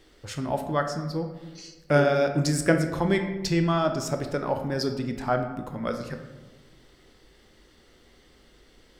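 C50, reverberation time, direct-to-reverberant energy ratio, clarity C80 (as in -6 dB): 8.0 dB, 1.2 s, 5.5 dB, 10.0 dB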